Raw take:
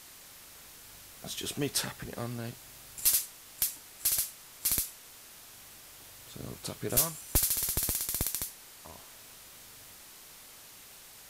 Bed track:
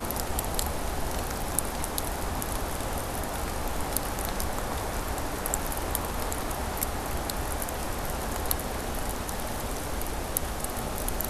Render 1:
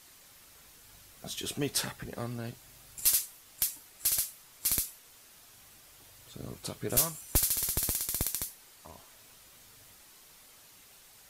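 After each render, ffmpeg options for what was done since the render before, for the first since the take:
-af "afftdn=nr=6:nf=-52"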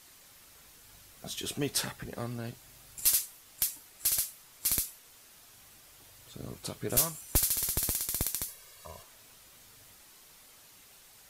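-filter_complex "[0:a]asettb=1/sr,asplit=3[s0][s1][s2];[s0]atrim=end=8.484[s3];[s1]atrim=start=8.48:end=9.03,asetpts=PTS-STARTPTS,afade=t=in:d=0.004:c=qsin,afade=t=out:st=0.546:d=0.004:c=qsin,aecho=1:1:1.8:0.95,atrim=end_sample=24255[s4];[s2]atrim=start=9.026[s5];[s3][s4]acrossfade=d=0.004:c1=hsin:c2=qsin[s6];[s6][s5]acrossfade=d=0.004:c1=qsin:c2=hsin"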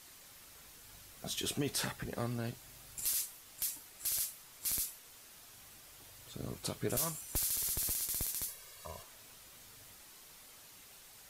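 -af "alimiter=limit=0.0631:level=0:latency=1:release=28"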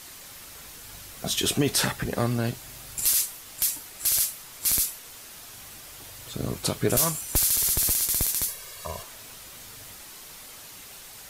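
-af "volume=3.98"

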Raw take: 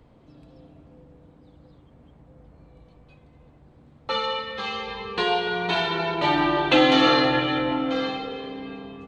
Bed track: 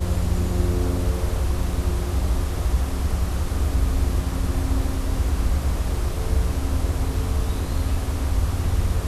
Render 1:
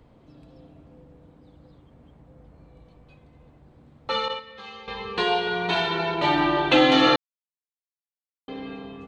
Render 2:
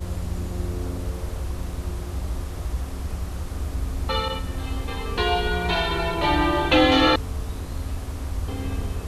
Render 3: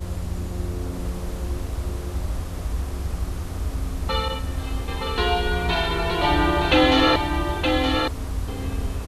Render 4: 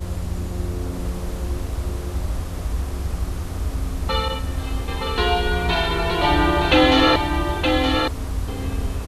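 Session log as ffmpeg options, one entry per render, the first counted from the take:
-filter_complex "[0:a]asettb=1/sr,asplit=3[s0][s1][s2];[s0]atrim=end=4.284[s3];[s1]atrim=start=4.28:end=4.88,asetpts=PTS-STARTPTS,afade=t=in:d=0.004:c=qsin,afade=t=out:st=0.596:d=0.004:c=qsin,agate=range=0.282:threshold=0.0398:ratio=16:release=100:detection=peak[s4];[s2]atrim=start=4.876[s5];[s3][s4]acrossfade=d=0.004:c1=hsin:c2=qsin[s6];[s6][s5]acrossfade=d=0.004:c1=qsin:c2=hsin,asplit=3[s7][s8][s9];[s7]atrim=end=7.16,asetpts=PTS-STARTPTS,afade=t=out:st=7.156:d=0.004:c=hsin[s10];[s8]atrim=start=7.16:end=8.48,asetpts=PTS-STARTPTS,volume=0[s11];[s9]atrim=start=8.48,asetpts=PTS-STARTPTS,afade=t=in:d=0.004:c=hsin[s12];[s10][s11][s12]concat=n=3:v=0:a=1"
-filter_complex "[1:a]volume=0.473[s0];[0:a][s0]amix=inputs=2:normalize=0"
-af "aecho=1:1:920:0.562"
-af "volume=1.26"

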